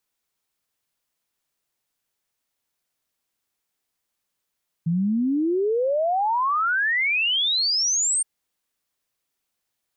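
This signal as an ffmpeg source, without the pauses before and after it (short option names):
-f lavfi -i "aevalsrc='0.112*clip(min(t,3.37-t)/0.01,0,1)*sin(2*PI*160*3.37/log(8900/160)*(exp(log(8900/160)*t/3.37)-1))':d=3.37:s=44100"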